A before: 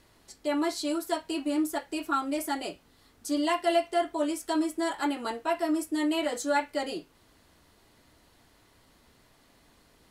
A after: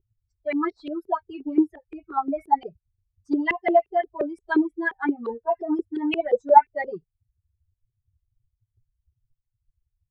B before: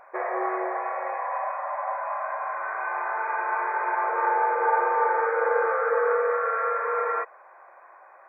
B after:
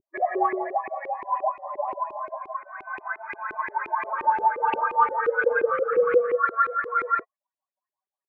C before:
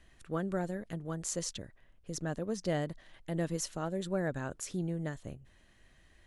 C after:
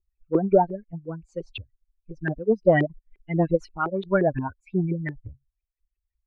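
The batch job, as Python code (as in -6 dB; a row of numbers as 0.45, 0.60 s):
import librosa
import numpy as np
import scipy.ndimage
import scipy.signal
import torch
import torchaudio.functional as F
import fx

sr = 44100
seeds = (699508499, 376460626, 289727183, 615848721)

y = fx.bin_expand(x, sr, power=3.0)
y = 10.0 ** (-23.5 / 20.0) * np.tanh(y / 10.0 ** (-23.5 / 20.0))
y = fx.filter_lfo_lowpass(y, sr, shape='saw_up', hz=5.7, low_hz=360.0, high_hz=2500.0, q=6.1)
y = y * 10.0 ** (-26 / 20.0) / np.sqrt(np.mean(np.square(y)))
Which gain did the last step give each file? +8.0, +3.0, +14.5 dB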